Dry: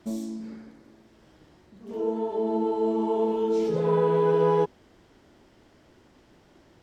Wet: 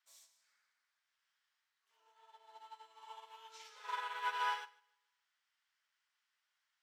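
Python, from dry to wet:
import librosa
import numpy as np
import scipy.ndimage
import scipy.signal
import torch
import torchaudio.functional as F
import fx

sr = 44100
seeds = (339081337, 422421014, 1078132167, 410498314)

y = scipy.signal.sosfilt(scipy.signal.butter(4, 1300.0, 'highpass', fs=sr, output='sos'), x)
y = fx.echo_feedback(y, sr, ms=149, feedback_pct=38, wet_db=-9)
y = fx.upward_expand(y, sr, threshold_db=-54.0, expansion=2.5)
y = y * librosa.db_to_amplitude(5.0)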